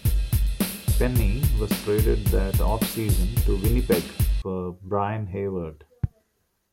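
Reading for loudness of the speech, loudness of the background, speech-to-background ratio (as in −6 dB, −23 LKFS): −28.5 LKFS, −25.5 LKFS, −3.0 dB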